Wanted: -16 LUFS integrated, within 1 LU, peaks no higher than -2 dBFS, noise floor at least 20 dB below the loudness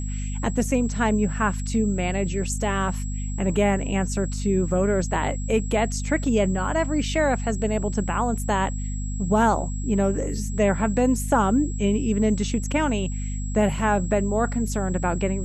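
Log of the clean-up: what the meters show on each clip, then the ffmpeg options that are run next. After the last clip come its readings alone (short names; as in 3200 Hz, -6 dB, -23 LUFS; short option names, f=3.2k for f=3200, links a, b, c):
hum 50 Hz; harmonics up to 250 Hz; hum level -26 dBFS; steady tone 7700 Hz; tone level -39 dBFS; loudness -24.0 LUFS; peak -7.5 dBFS; loudness target -16.0 LUFS
-> -af "bandreject=f=50:t=h:w=4,bandreject=f=100:t=h:w=4,bandreject=f=150:t=h:w=4,bandreject=f=200:t=h:w=4,bandreject=f=250:t=h:w=4"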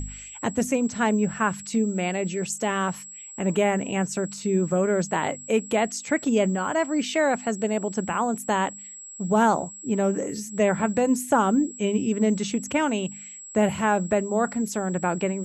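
hum none; steady tone 7700 Hz; tone level -39 dBFS
-> -af "bandreject=f=7.7k:w=30"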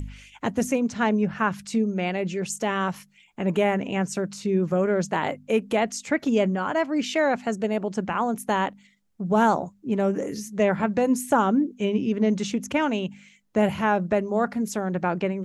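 steady tone none; loudness -25.0 LUFS; peak -8.5 dBFS; loudness target -16.0 LUFS
-> -af "volume=9dB,alimiter=limit=-2dB:level=0:latency=1"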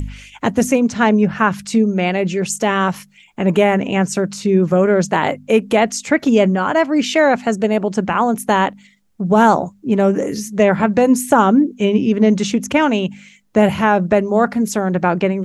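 loudness -16.0 LUFS; peak -2.0 dBFS; noise floor -50 dBFS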